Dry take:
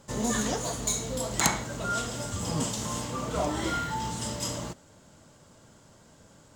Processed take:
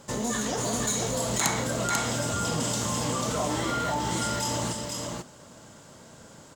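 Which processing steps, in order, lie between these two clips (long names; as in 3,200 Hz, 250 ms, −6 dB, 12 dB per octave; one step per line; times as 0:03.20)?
low-shelf EQ 84 Hz −10 dB
in parallel at +0.5 dB: compressor whose output falls as the input rises −36 dBFS
on the sum: single-tap delay 492 ms −3.5 dB
level −2.5 dB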